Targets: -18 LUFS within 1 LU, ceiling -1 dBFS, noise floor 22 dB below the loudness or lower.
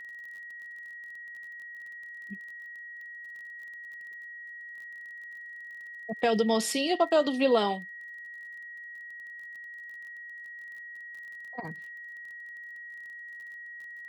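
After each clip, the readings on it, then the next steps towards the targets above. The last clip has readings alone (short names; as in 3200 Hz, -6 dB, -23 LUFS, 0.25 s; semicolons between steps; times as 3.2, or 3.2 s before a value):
ticks 28/s; steady tone 1900 Hz; tone level -41 dBFS; loudness -34.0 LUFS; peak -13.5 dBFS; loudness target -18.0 LUFS
-> de-click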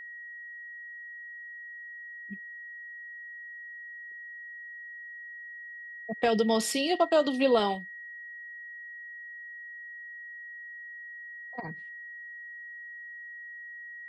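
ticks 0.14/s; steady tone 1900 Hz; tone level -41 dBFS
-> notch 1900 Hz, Q 30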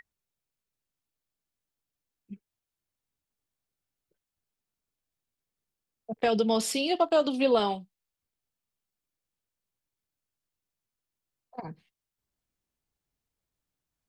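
steady tone none; loudness -26.0 LUFS; peak -13.5 dBFS; loudness target -18.0 LUFS
-> gain +8 dB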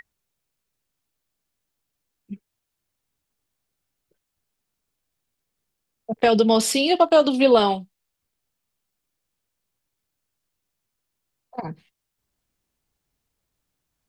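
loudness -18.5 LUFS; peak -5.5 dBFS; noise floor -81 dBFS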